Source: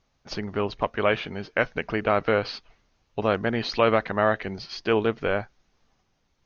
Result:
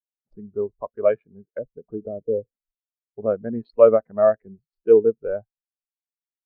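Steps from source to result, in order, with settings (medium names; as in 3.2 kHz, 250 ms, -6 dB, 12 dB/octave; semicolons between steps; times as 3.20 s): local Wiener filter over 15 samples; 1.51–3.26 s: low-pass that closes with the level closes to 490 Hz, closed at -22 dBFS; spectral contrast expander 2.5:1; trim +6 dB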